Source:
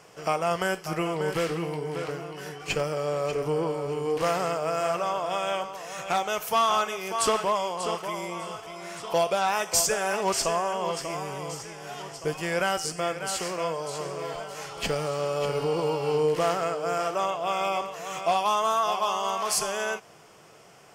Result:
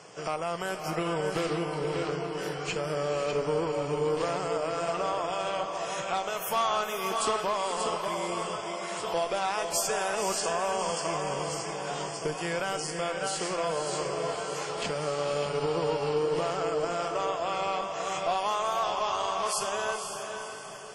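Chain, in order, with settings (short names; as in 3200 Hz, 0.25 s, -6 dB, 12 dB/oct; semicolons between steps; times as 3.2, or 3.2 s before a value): HPF 110 Hz 12 dB/oct; added harmonics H 6 -27 dB, 7 -26 dB, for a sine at -12 dBFS; bell 2100 Hz -2.5 dB 0.74 oct; in parallel at +1 dB: compressor 10:1, threshold -38 dBFS, peak gain reduction 18.5 dB; on the sum: limiter -20 dBFS, peak gain reduction 8 dB; dynamic EQ 5900 Hz, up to -3 dB, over -52 dBFS, Q 4.2; on a send: diffused feedback echo 0.516 s, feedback 44%, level -6 dB; on the sum: WMA 32 kbps 44100 Hz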